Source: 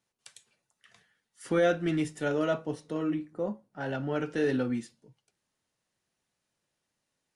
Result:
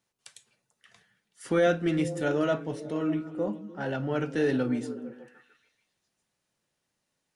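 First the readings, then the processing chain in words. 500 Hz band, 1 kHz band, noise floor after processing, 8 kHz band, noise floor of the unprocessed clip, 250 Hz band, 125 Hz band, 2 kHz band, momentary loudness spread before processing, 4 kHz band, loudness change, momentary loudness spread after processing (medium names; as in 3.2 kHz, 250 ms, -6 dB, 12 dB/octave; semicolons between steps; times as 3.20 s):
+2.0 dB, +1.5 dB, -81 dBFS, +1.5 dB, -83 dBFS, +2.0 dB, +2.5 dB, +1.5 dB, 10 LU, +1.5 dB, +1.5 dB, 10 LU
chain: repeats whose band climbs or falls 151 ms, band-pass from 160 Hz, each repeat 0.7 oct, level -7 dB; trim +1.5 dB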